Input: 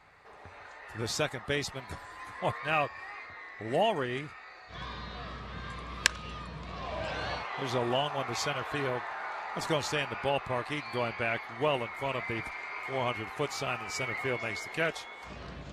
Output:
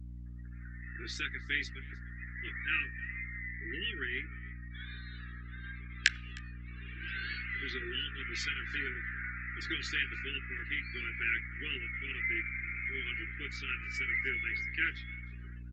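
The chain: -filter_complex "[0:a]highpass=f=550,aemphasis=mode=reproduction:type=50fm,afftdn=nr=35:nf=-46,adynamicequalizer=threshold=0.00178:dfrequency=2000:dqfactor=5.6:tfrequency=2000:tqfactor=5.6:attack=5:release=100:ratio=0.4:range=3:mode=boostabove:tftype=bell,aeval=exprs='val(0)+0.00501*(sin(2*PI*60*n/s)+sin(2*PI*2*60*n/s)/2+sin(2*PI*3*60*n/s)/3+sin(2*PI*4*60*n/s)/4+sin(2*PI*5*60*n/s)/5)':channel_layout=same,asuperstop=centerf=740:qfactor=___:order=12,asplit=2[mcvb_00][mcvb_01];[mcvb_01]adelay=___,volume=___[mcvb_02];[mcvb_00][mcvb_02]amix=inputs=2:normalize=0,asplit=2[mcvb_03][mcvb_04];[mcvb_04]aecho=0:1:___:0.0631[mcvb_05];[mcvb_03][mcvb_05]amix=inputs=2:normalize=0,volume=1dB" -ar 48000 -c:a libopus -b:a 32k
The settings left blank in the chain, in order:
0.68, 15, -9dB, 309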